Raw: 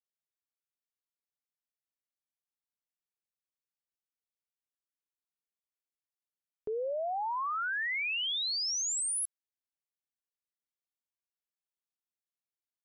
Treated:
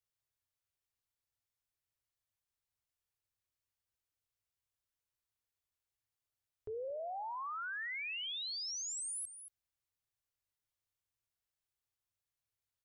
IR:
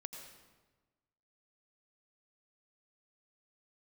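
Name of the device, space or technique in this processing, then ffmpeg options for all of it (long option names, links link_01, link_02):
car stereo with a boomy subwoofer: -af "lowshelf=frequency=140:width_type=q:width=3:gain=9,aecho=1:1:228:0.0841,bandreject=frequency=85.17:width_type=h:width=4,bandreject=frequency=170.34:width_type=h:width=4,bandreject=frequency=255.51:width_type=h:width=4,bandreject=frequency=340.68:width_type=h:width=4,bandreject=frequency=425.85:width_type=h:width=4,bandreject=frequency=511.02:width_type=h:width=4,bandreject=frequency=596.19:width_type=h:width=4,bandreject=frequency=681.36:width_type=h:width=4,bandreject=frequency=766.53:width_type=h:width=4,bandreject=frequency=851.7:width_type=h:width=4,bandreject=frequency=936.87:width_type=h:width=4,alimiter=level_in=15.5dB:limit=-24dB:level=0:latency=1:release=17,volume=-15.5dB,volume=2dB"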